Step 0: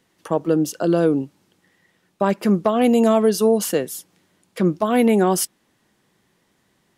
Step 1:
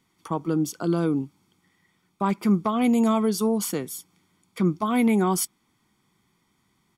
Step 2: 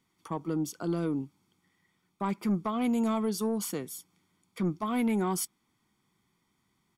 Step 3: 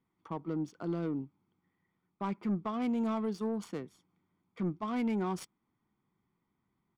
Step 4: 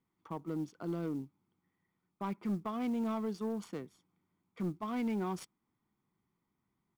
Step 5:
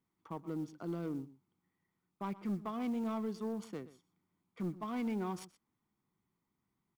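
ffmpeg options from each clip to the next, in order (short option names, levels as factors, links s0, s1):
-af "aecho=1:1:0.9:0.67,volume=0.531"
-af "asoftclip=type=tanh:threshold=0.2,volume=0.501"
-af "adynamicsmooth=sensitivity=7:basefreq=1900,volume=0.631"
-af "acrusher=bits=8:mode=log:mix=0:aa=0.000001,volume=0.75"
-filter_complex "[0:a]asplit=2[s0][s1];[s1]adelay=122.4,volume=0.141,highshelf=f=4000:g=-2.76[s2];[s0][s2]amix=inputs=2:normalize=0,volume=0.794"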